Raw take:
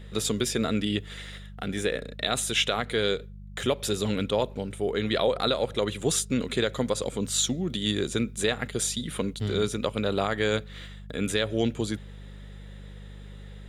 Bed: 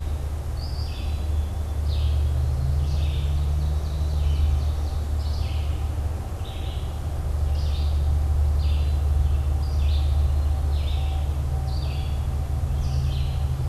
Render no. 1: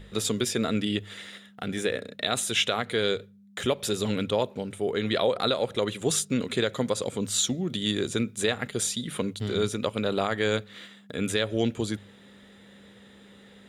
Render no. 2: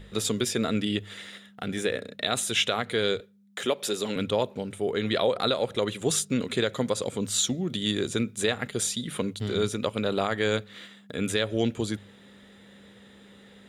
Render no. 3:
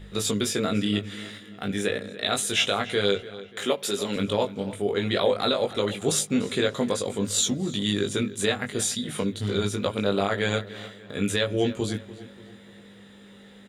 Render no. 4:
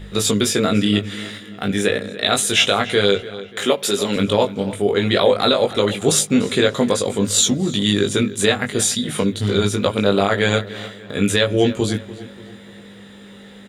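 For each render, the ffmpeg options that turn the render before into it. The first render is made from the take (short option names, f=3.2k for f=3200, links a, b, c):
-af "bandreject=f=50:t=h:w=4,bandreject=f=100:t=h:w=4,bandreject=f=150:t=h:w=4"
-filter_complex "[0:a]asettb=1/sr,asplit=3[a][b][c];[a]atrim=end=3.204[d];[b]atrim=start=3.2:end=4.16,asetpts=PTS-STARTPTS,afade=t=in:d=0.004:c=qsin,afade=t=out:st=0.956:d=0.004:c=qsin,highpass=250[e];[c]atrim=start=4.156[f];[d][e]acrossfade=d=0.004:c1=hsin:c2=qsin[g];[g][f]acrossfade=d=0.004:c1=qsin:c2=hsin"
-filter_complex "[0:a]asplit=2[a][b];[b]adelay=20,volume=-3.5dB[c];[a][c]amix=inputs=2:normalize=0,asplit=2[d][e];[e]adelay=292,lowpass=f=4k:p=1,volume=-16dB,asplit=2[f][g];[g]adelay=292,lowpass=f=4k:p=1,volume=0.47,asplit=2[h][i];[i]adelay=292,lowpass=f=4k:p=1,volume=0.47,asplit=2[j][k];[k]adelay=292,lowpass=f=4k:p=1,volume=0.47[l];[d][f][h][j][l]amix=inputs=5:normalize=0"
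-af "volume=8dB,alimiter=limit=-3dB:level=0:latency=1"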